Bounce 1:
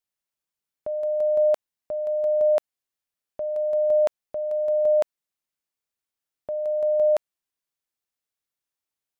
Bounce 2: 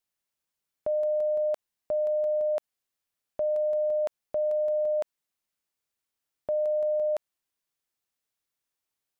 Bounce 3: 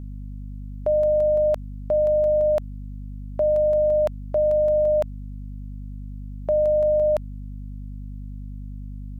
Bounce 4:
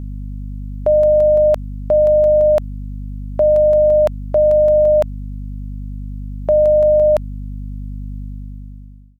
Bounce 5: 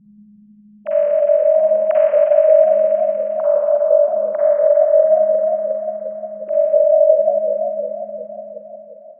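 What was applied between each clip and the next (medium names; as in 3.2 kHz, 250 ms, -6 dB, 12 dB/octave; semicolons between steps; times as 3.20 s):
peak limiter -25 dBFS, peak gain reduction 9.5 dB; trim +2 dB
hum 50 Hz, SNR 11 dB; trim +7 dB
fade out at the end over 1.01 s; trim +7.5 dB
formants replaced by sine waves; reverberation RT60 4.4 s, pre-delay 40 ms, DRR -8.5 dB; modulated delay 178 ms, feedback 73%, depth 209 cents, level -14 dB; trim -8.5 dB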